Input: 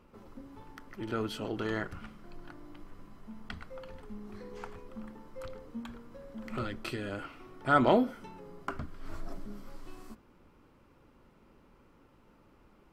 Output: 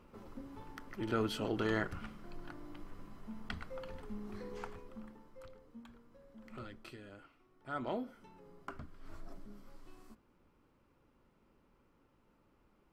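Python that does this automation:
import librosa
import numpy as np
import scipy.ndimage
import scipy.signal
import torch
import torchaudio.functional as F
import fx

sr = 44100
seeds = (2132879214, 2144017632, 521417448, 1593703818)

y = fx.gain(x, sr, db=fx.line((4.51, 0.0), (5.56, -12.0), (6.69, -12.0), (7.45, -19.0), (8.47, -9.0)))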